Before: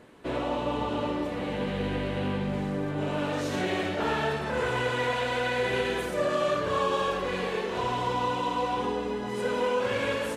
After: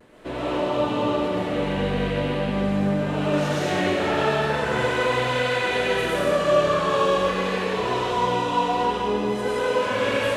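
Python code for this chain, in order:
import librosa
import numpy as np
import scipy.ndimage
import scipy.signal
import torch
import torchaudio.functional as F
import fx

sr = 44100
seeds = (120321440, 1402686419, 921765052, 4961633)

y = fx.vibrato(x, sr, rate_hz=0.44, depth_cents=21.0)
y = fx.rev_freeverb(y, sr, rt60_s=1.3, hf_ratio=0.95, predelay_ms=75, drr_db=-5.0)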